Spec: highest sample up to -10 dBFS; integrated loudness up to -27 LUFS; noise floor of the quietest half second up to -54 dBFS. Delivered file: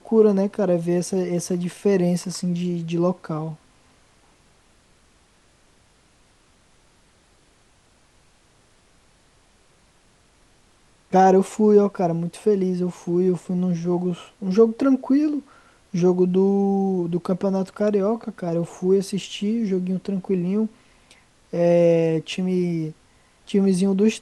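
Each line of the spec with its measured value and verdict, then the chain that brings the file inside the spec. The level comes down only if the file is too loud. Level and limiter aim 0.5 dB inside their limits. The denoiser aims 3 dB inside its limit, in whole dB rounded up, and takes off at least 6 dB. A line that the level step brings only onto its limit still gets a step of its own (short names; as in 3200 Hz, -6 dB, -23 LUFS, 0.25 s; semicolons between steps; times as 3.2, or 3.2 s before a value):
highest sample -5.0 dBFS: fail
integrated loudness -21.5 LUFS: fail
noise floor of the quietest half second -58 dBFS: OK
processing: gain -6 dB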